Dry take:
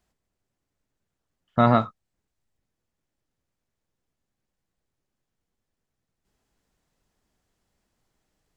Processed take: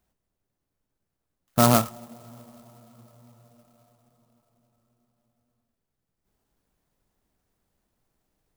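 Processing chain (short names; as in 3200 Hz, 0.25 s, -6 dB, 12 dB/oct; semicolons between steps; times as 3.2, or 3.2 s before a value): on a send at -21 dB: LPF 1100 Hz 6 dB/oct + reverb RT60 5.8 s, pre-delay 3 ms; on the sum: clock jitter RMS 0.095 ms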